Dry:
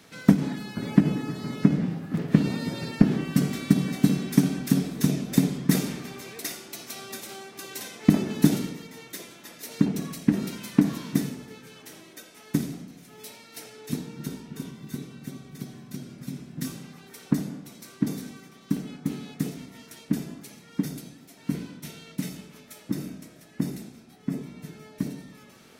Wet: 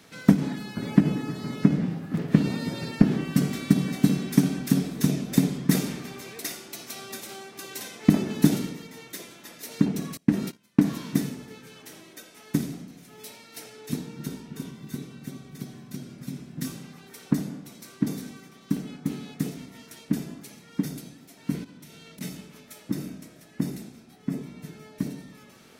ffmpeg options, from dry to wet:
-filter_complex "[0:a]asettb=1/sr,asplit=3[a][b][c];[a]atrim=end=10.174[d];[b]atrim=start=10.17:end=10.94,asetpts=PTS-STARTPTS,afade=t=in:d=0.004:c=qsin,afade=t=out:st=0.766:d=0.004:c=qsin,agate=range=-26dB:threshold=-34dB:ratio=16:release=100:detection=peak[e];[c]atrim=start=10.936[f];[d][e]acrossfade=d=0.004:c1=hsin:c2=qsin[g];[g][f]acrossfade=d=0.004:c1=qsin:c2=hsin,asettb=1/sr,asplit=3[h][i][j];[h]atrim=end=21.644[k];[i]atrim=start=21.64:end=22.21,asetpts=PTS-STARTPTS,afade=t=in:d=0.004:c=qsin,afade=t=out:st=0.566:d=0.004:c=qsin,acompressor=threshold=-43dB:ratio=10:attack=3.2:release=140:knee=1:detection=peak[l];[j]atrim=start=22.206[m];[k][l]acrossfade=d=0.004:c1=hsin:c2=qsin[n];[n][m]acrossfade=d=0.004:c1=qsin:c2=hsin"

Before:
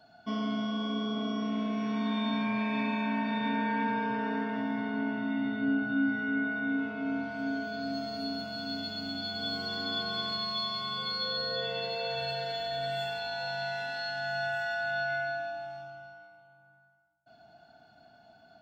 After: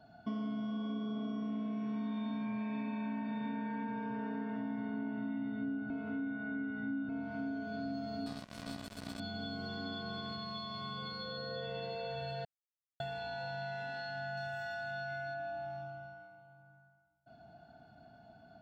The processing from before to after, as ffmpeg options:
-filter_complex "[0:a]asettb=1/sr,asplit=3[a][b][c];[a]atrim=end=8.264[d];[b]atrim=start=8.26:end=9.2,asetpts=PTS-STARTPTS,afade=t=in:d=0.004:c=qsin,afade=t=out:st=0.936:d=0.004:c=qsin,acrusher=bits=4:mix=0:aa=0.5[e];[c]atrim=start=9.196[f];[d][e]acrossfade=d=0.004:c1=hsin:c2=qsin[g];[g][f]acrossfade=d=0.004:c1=qsin:c2=hsin,asettb=1/sr,asplit=3[h][i][j];[h]atrim=end=14.374[k];[i]atrim=start=14.37:end=15.34,asetpts=PTS-STARTPTS,afade=t=in:d=0.004:c=qsin,afade=t=out:st=0.966:d=0.004:c=qsin,bass=f=250:g=1,treble=f=4k:g=10[l];[j]atrim=start=15.336[m];[k][l]acrossfade=d=0.004:c1=hsin:c2=qsin[n];[n][m]acrossfade=d=0.004:c1=qsin:c2=hsin,asplit=5[o][p][q][r][s];[o]atrim=end=5.902[t];[p]atrim=start=5.898:end=7.092,asetpts=PTS-STARTPTS,areverse[u];[q]atrim=start=7.088:end=12.45,asetpts=PTS-STARTPTS,afade=t=out:st=5.358:d=0.004:c=hsin[v];[r]atrim=start=12.45:end=13,asetpts=PTS-STARTPTS,volume=0[w];[s]atrim=start=13,asetpts=PTS-STARTPTS,afade=t=in:d=0.004:c=hsin[x];[t][u]acrossfade=d=0.004:c1=hsin:c2=hsin[y];[v][w][x]concat=n=3:v=0:a=1[z];[y][z]acrossfade=d=0.004:c1=hsin:c2=hsin,bass=f=250:g=6,treble=f=4k:g=-3,acompressor=threshold=-36dB:ratio=6,tiltshelf=f=1.4k:g=3.5,volume=-3dB"

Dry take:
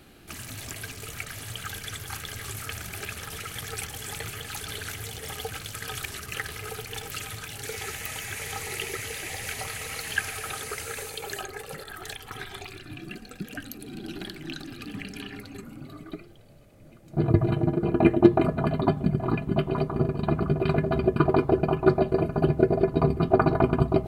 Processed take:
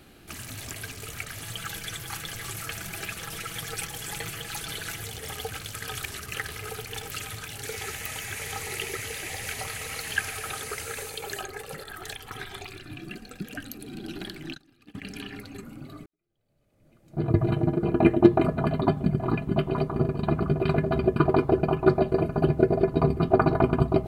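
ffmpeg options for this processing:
-filter_complex "[0:a]asettb=1/sr,asplit=3[a][b][c];[a]atrim=end=1.424[d];[b]atrim=start=1.42:end=5.04,asetpts=PTS-STARTPTS,afade=t=in:d=0.004:c=qsin,afade=t=out:st=3.616:d=0.004:c=qsin,aecho=1:1:6:0.55,atrim=end_sample=159642[e];[c]atrim=start=5.036[f];[d][e]acrossfade=d=0.004:c1=hsin:c2=qsin[g];[g][f]acrossfade=d=0.004:c1=qsin:c2=hsin,asplit=3[h][i][j];[h]afade=t=out:st=14.48:d=0.02[k];[i]agate=range=-22dB:threshold=-36dB:ratio=16:release=100:detection=peak,afade=t=in:st=14.48:d=0.02,afade=t=out:st=15.02:d=0.02[l];[j]afade=t=in:st=15.02:d=0.02[m];[k][l][m]amix=inputs=3:normalize=0,asplit=2[n][o];[n]atrim=end=16.06,asetpts=PTS-STARTPTS,afade=t=out:st=16.056:d=0.004:c=hsin[p];[o]atrim=start=16.06,asetpts=PTS-STARTPTS,afade=t=in:d=1.41:c=qua[q];[p][q]concat=n=2:v=0:a=1"

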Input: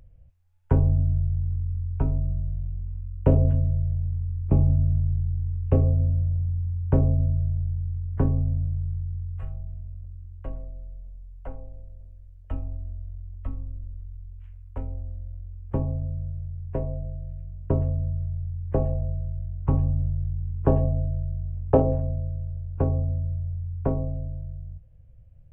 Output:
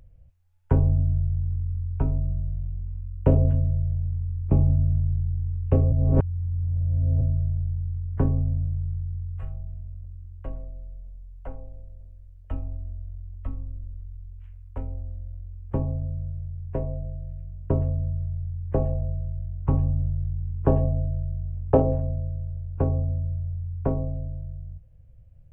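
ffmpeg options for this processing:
-filter_complex "[0:a]asplit=3[a][b][c];[a]atrim=end=5.922[d];[b]atrim=start=5.918:end=7.212,asetpts=PTS-STARTPTS,areverse[e];[c]atrim=start=7.208[f];[d][e]acrossfade=d=0.004:c1=hsin:c2=hsin[g];[g][f]acrossfade=d=0.004:c1=hsin:c2=hsin"

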